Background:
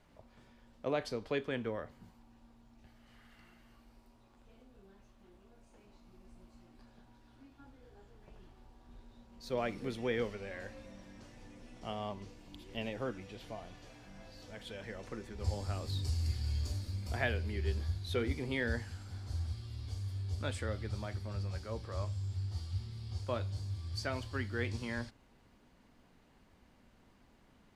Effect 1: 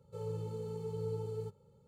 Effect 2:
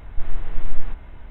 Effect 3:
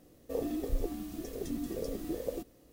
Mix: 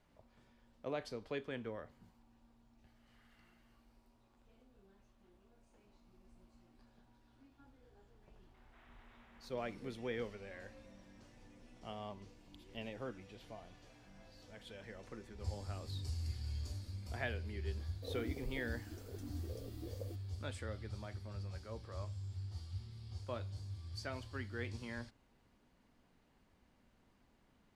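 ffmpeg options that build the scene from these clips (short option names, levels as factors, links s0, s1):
-filter_complex "[0:a]volume=0.473[s0];[2:a]highpass=810,atrim=end=1.3,asetpts=PTS-STARTPTS,volume=0.133,afade=t=in:d=0.004:c=hsin,afade=t=out:st=1.296:d=0.004:c=hsin,adelay=8540[s1];[3:a]atrim=end=2.72,asetpts=PTS-STARTPTS,volume=0.224,afade=t=in:d=0.004:c=hsin,afade=t=out:st=2.716:d=0.004:c=hsin,adelay=17730[s2];[s0][s1][s2]amix=inputs=3:normalize=0"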